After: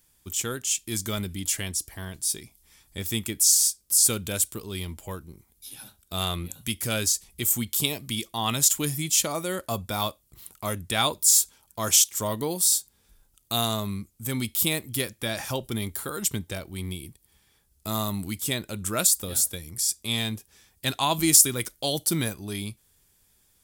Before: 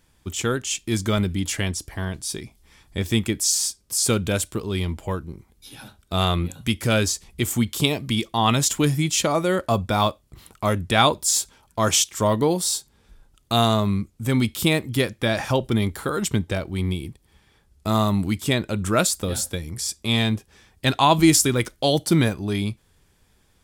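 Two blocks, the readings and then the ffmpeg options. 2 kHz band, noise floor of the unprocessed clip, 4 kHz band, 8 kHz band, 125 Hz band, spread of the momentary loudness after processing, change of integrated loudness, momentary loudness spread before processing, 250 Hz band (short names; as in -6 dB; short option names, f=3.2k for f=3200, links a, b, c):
-6.5 dB, -62 dBFS, -3.0 dB, +3.0 dB, -9.5 dB, 16 LU, -2.0 dB, 9 LU, -9.5 dB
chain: -af "aemphasis=mode=production:type=75fm,volume=-8.5dB"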